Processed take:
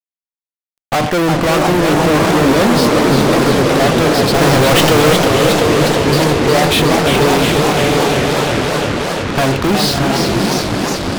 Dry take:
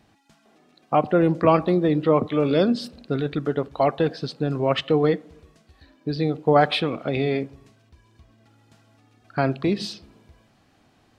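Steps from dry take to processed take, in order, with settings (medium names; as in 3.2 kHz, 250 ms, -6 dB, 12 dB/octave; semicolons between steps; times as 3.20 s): echo that smears into a reverb 668 ms, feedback 53%, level -10.5 dB; fuzz box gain 41 dB, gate -38 dBFS; 4.34–5.13 s: waveshaping leveller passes 5; modulated delay 358 ms, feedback 79%, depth 205 cents, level -5 dB; trim +1 dB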